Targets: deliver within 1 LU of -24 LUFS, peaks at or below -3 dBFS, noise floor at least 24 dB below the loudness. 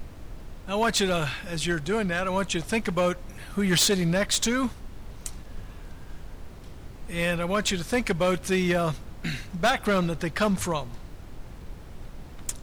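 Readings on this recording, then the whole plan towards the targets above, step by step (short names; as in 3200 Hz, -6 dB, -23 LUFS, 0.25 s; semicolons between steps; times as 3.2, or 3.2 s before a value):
clipped 0.8%; flat tops at -17.5 dBFS; noise floor -43 dBFS; noise floor target -50 dBFS; loudness -26.0 LUFS; peak -17.5 dBFS; loudness target -24.0 LUFS
-> clip repair -17.5 dBFS; noise print and reduce 7 dB; gain +2 dB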